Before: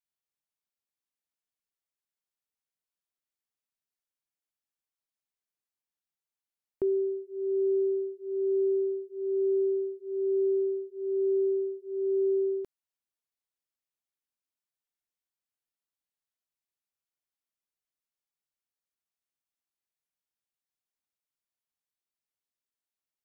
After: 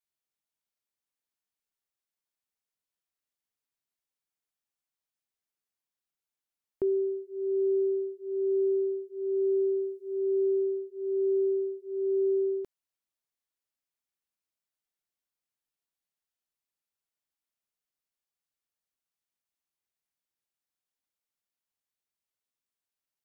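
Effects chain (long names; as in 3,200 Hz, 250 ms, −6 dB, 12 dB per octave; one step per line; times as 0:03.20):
0:09.76–0:10.19: bass and treble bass +1 dB, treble +6 dB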